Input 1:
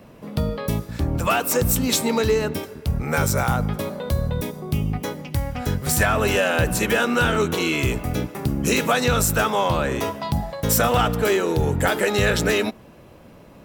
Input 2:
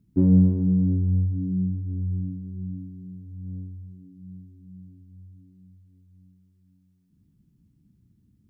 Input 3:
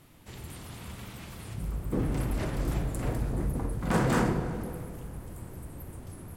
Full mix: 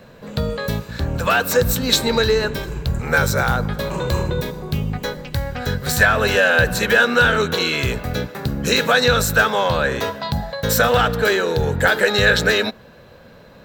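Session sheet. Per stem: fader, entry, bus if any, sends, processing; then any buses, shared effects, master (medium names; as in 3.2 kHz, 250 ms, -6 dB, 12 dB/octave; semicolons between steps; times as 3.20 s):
+0.5 dB, 0.00 s, no send, graphic EQ with 31 bands 315 Hz -8 dB, 500 Hz +6 dB, 1.6 kHz +11 dB, 4 kHz +11 dB, 10 kHz -9 dB
-19.5 dB, 1.10 s, no send, none
-5.5 dB, 0.00 s, no send, rippled EQ curve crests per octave 0.72, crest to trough 18 dB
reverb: none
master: none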